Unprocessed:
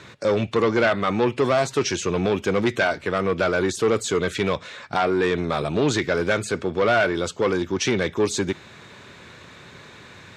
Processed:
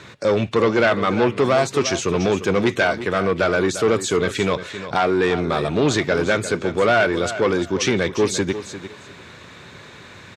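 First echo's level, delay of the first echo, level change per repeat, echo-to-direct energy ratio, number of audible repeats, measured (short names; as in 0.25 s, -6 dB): -12.0 dB, 0.349 s, -14.5 dB, -12.0 dB, 2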